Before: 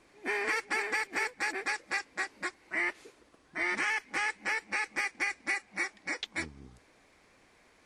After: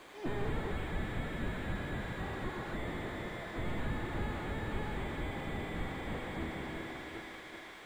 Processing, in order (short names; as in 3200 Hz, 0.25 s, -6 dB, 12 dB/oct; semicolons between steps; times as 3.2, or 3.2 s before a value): regenerating reverse delay 0.194 s, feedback 69%, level -9.5 dB; 0.71–2.19 steep high-pass 1300 Hz 72 dB/oct; overdrive pedal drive 11 dB, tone 2400 Hz, clips at -18 dBFS; dark delay 77 ms, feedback 76%, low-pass 2900 Hz, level -10 dB; careless resampling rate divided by 8×, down none, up hold; slew limiter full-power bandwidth 5.1 Hz; gain +6.5 dB